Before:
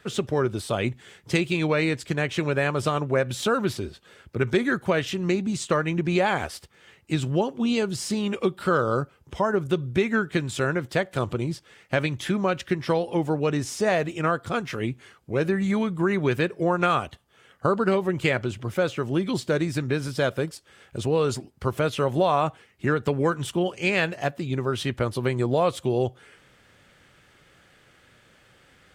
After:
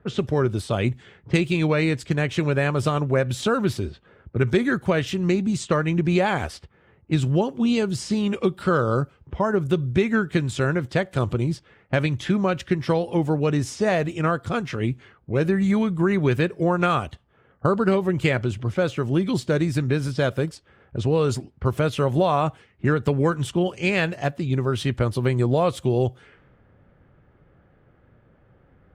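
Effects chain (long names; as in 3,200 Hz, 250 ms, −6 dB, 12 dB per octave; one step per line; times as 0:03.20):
low-pass that shuts in the quiet parts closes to 910 Hz, open at −23.5 dBFS
low-shelf EQ 190 Hz +8.5 dB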